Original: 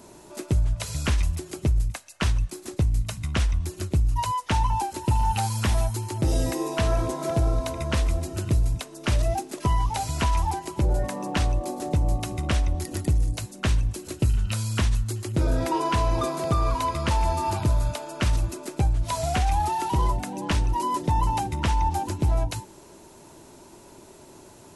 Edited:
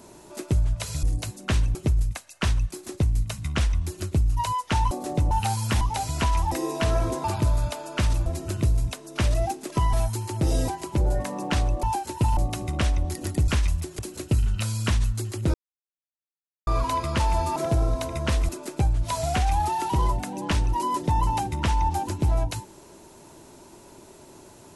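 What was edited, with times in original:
0:01.03–0:01.54: swap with 0:13.18–0:13.90
0:04.70–0:05.24: swap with 0:11.67–0:12.07
0:05.74–0:06.49: swap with 0:09.81–0:10.52
0:07.21–0:08.14: swap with 0:17.47–0:18.49
0:15.45–0:16.58: silence

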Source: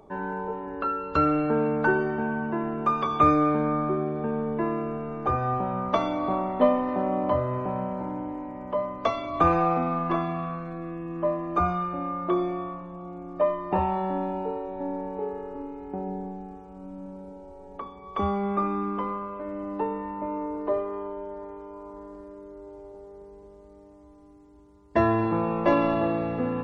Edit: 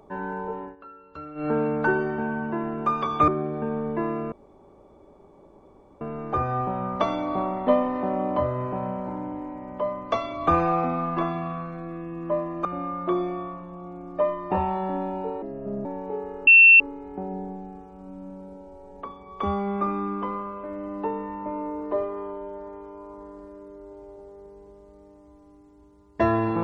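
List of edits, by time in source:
0:00.63–0:01.48: duck −17.5 dB, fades 0.13 s
0:03.28–0:03.90: remove
0:04.94: splice in room tone 1.69 s
0:11.58–0:11.86: remove
0:14.63–0:14.94: play speed 72%
0:15.56: insert tone 2,700 Hz −8.5 dBFS 0.33 s

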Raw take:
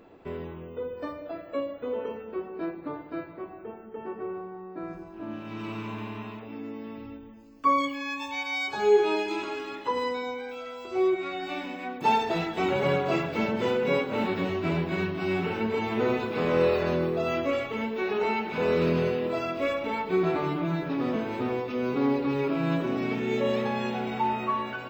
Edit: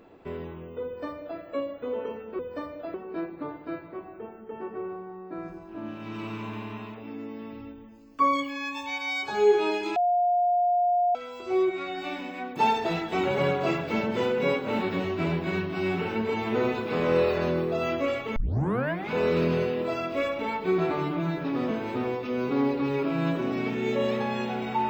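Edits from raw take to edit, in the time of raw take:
0:00.85–0:01.40: duplicate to 0:02.39
0:09.41–0:10.60: beep over 709 Hz −20 dBFS
0:17.81: tape start 0.75 s

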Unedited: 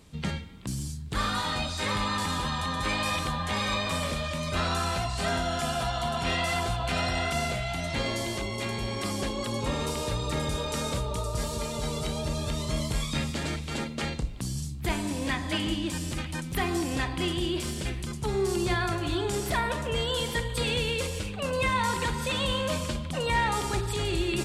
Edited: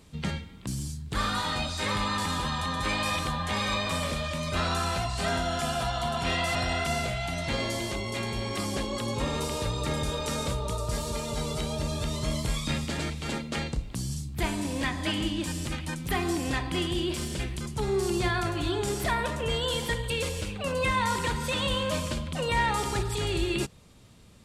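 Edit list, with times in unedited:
0:06.55–0:07.01: remove
0:20.56–0:20.88: remove

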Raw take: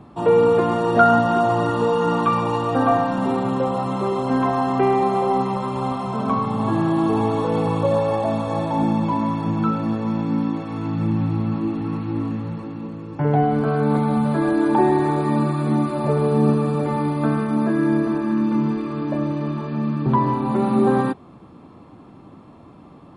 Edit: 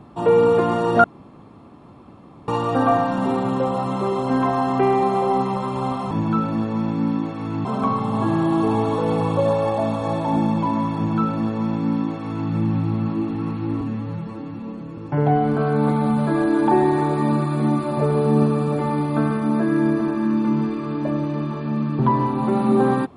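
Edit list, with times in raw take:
0:01.04–0:02.48: fill with room tone
0:09.42–0:10.96: duplicate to 0:06.11
0:12.27–0:13.05: time-stretch 1.5×

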